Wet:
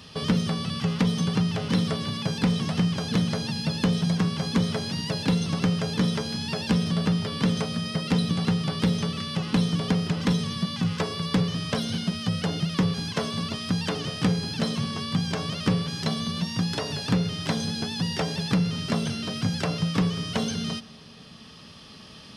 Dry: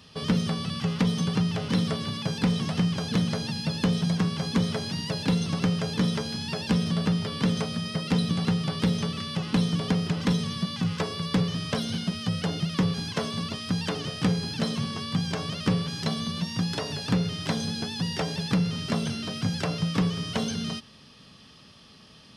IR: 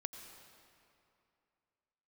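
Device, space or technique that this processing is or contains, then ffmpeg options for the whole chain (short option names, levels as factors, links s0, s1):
ducked reverb: -filter_complex "[0:a]asplit=3[s0][s1][s2];[1:a]atrim=start_sample=2205[s3];[s1][s3]afir=irnorm=-1:irlink=0[s4];[s2]apad=whole_len=986290[s5];[s4][s5]sidechaincompress=threshold=0.0141:ratio=8:attack=16:release=1350,volume=1.33[s6];[s0][s6]amix=inputs=2:normalize=0"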